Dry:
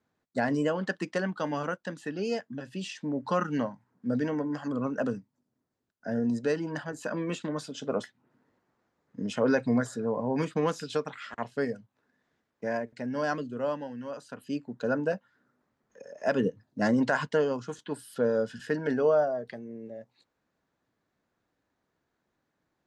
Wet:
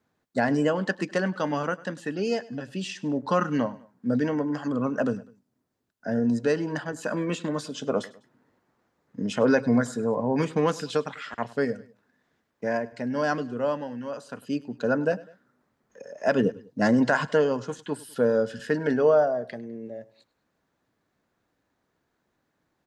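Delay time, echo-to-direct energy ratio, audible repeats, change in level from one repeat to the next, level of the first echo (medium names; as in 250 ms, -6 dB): 101 ms, -19.5 dB, 2, -7.0 dB, -20.5 dB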